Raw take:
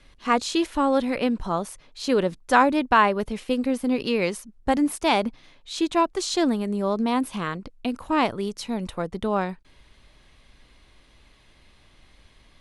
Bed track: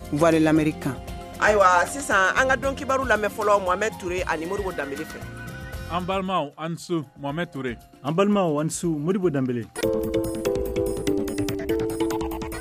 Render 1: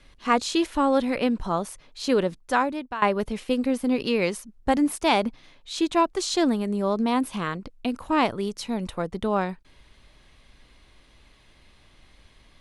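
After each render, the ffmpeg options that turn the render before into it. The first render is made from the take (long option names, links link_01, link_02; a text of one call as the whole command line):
ffmpeg -i in.wav -filter_complex "[0:a]asplit=2[link_01][link_02];[link_01]atrim=end=3.02,asetpts=PTS-STARTPTS,afade=type=out:start_time=2.12:duration=0.9:silence=0.125893[link_03];[link_02]atrim=start=3.02,asetpts=PTS-STARTPTS,afade=type=in:duration=0.004:curve=hsin:silence=0.125893[link_04];[link_03][link_04]concat=n=2:v=0:a=1" out.wav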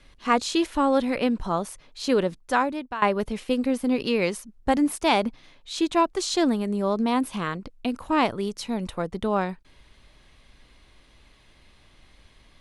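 ffmpeg -i in.wav -af anull out.wav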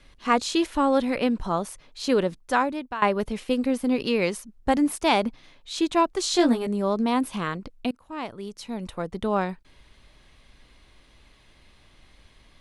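ffmpeg -i in.wav -filter_complex "[0:a]asettb=1/sr,asplit=3[link_01][link_02][link_03];[link_01]atrim=end=6.224[link_04];[link_02]atrim=start=6.22:end=6.67,asetpts=PTS-STARTPTS,afade=type=in:duration=0.004:curve=qsin,afade=type=out:start_time=0.446:duration=0.004:curve=qsin,asplit=2[link_05][link_06];[link_06]adelay=17,volume=-3dB[link_07];[link_05][link_07]amix=inputs=2:normalize=0,atrim=end_sample=19845[link_08];[link_03]atrim=start=6.666[link_09];[link_04][link_08]acrossfade=duration=0.004:curve1=hsin:curve2=qsin[link_10];[link_10][link_09]acrossfade=duration=0.004:curve1=qsin:curve2=hsin,asplit=2[link_11][link_12];[link_11]atrim=end=7.91,asetpts=PTS-STARTPTS,afade=type=out:start_time=7.906:duration=0.004:curve=hsin:silence=0.0707946[link_13];[link_12]atrim=start=7.91,asetpts=PTS-STARTPTS,afade=type=in:duration=1.44:silence=0.0707946[link_14];[link_13][link_14]concat=n=2:v=0:a=1" out.wav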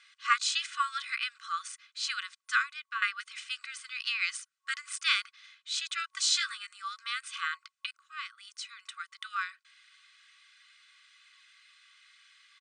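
ffmpeg -i in.wav -af "afftfilt=real='re*between(b*sr/4096,1100,9400)':imag='im*between(b*sr/4096,1100,9400)':win_size=4096:overlap=0.75,aecho=1:1:2:0.44" out.wav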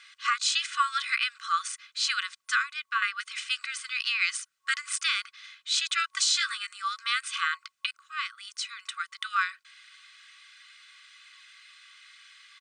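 ffmpeg -i in.wav -af "alimiter=limit=-21dB:level=0:latency=1:release=241,acontrast=86" out.wav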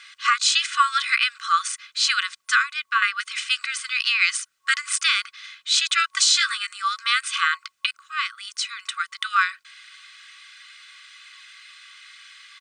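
ffmpeg -i in.wav -af "volume=7dB" out.wav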